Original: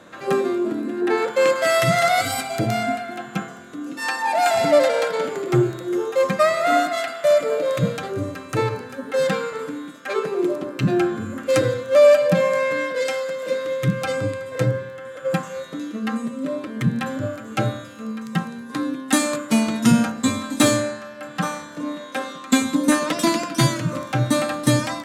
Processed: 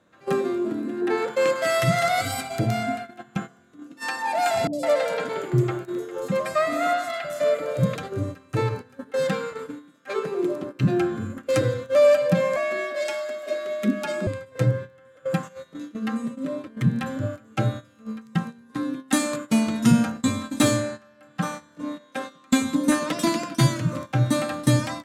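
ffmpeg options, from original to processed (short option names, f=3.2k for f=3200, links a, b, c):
-filter_complex "[0:a]asettb=1/sr,asplit=3[a][b][c];[a]atrim=end=4.674[d];[b]atrim=start=4.67:end=7.96,asetpts=PTS-STARTPTS,afade=t=in:d=0.004:c=qsin,afade=t=out:st=3.286:d=0.004:c=qsin,acrossover=split=420|4900[e][f][g];[g]adelay=60[h];[f]adelay=160[i];[e][i][h]amix=inputs=3:normalize=0,atrim=end_sample=145089[j];[c]atrim=start=7.956[k];[d][j]acrossfade=d=0.004:c1=hsin:c2=qsin[l];[l][k]acrossfade=d=0.004:c1=qsin:c2=hsin,asettb=1/sr,asplit=3[m][n][o];[m]atrim=end=12.564[p];[n]atrim=start=12.56:end=14.27,asetpts=PTS-STARTPTS,afade=t=in:d=0.004:c=qsin,afade=t=out:st=1.706:d=0.004:c=qsin,afreqshift=80[q];[o]atrim=start=14.266[r];[p][q]acrossfade=d=0.004:c1=hsin:c2=qsin[s];[s][r]acrossfade=d=0.004:c1=qsin:c2=hsin,agate=range=-13dB:threshold=-29dB:ratio=16:detection=peak,equalizer=f=69:t=o:w=2.8:g=7,volume=-4.5dB"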